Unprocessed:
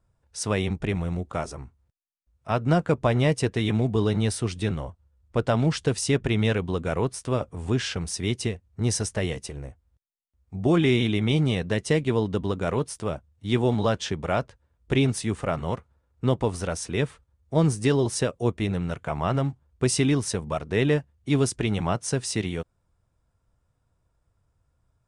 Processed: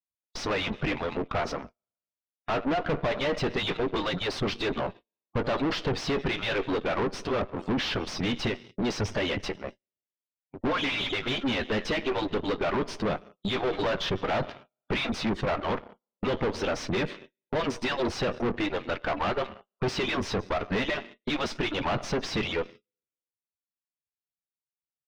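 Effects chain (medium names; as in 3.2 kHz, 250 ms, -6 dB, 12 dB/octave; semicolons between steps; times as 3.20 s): harmonic-percussive separation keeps percussive; peaking EQ 3.9 kHz +9.5 dB 1.7 oct; Schroeder reverb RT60 1.4 s, combs from 26 ms, DRR 20 dB; gate -49 dBFS, range -33 dB; on a send: early reflections 10 ms -16 dB, 21 ms -17 dB; on the sum: spectral gate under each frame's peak -20 dB strong; in parallel at +1 dB: compression, threshold -34 dBFS, peak gain reduction 15.5 dB; on the sum: waveshaping leveller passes 2; high-pass 48 Hz 24 dB/octave; valve stage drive 26 dB, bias 0.7; distance through air 230 m; trim +2.5 dB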